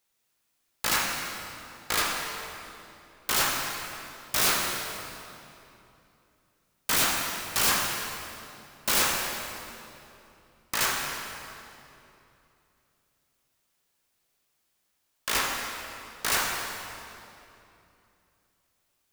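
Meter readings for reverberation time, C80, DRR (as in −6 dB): 2.9 s, 2.5 dB, −0.5 dB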